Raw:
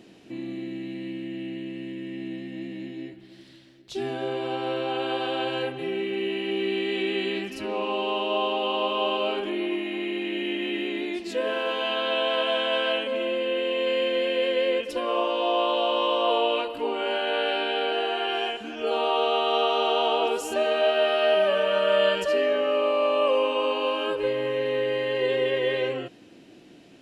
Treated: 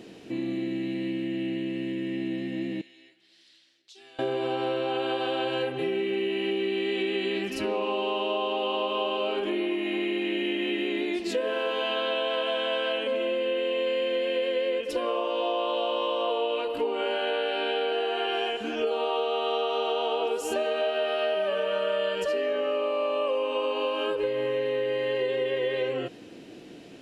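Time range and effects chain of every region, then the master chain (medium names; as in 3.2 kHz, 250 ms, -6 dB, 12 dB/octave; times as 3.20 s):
2.81–4.19 s: low-pass 5.8 kHz + differentiator + compression 3:1, threshold -54 dBFS
whole clip: peaking EQ 460 Hz +5.5 dB 0.31 oct; compression, threshold -29 dBFS; trim +4 dB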